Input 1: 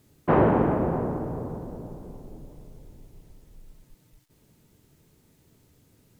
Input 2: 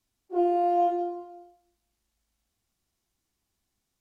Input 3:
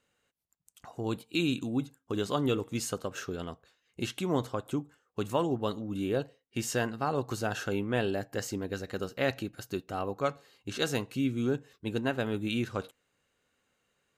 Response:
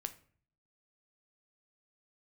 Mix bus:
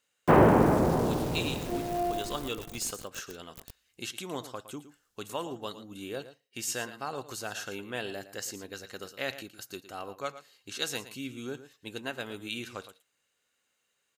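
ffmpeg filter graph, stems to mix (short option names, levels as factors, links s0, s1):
-filter_complex "[0:a]aeval=exprs='val(0)*gte(abs(val(0)),0.00891)':c=same,volume=1[s0];[1:a]adelay=1350,volume=0.531[s1];[2:a]lowshelf=f=270:g=-9,volume=0.531,asplit=3[s2][s3][s4];[s3]volume=0.211[s5];[s4]apad=whole_len=236180[s6];[s1][s6]sidechaincompress=threshold=0.00631:ratio=8:attack=16:release=311[s7];[s5]aecho=0:1:113:1[s8];[s0][s7][s2][s8]amix=inputs=4:normalize=0,highshelf=f=2500:g=9.5"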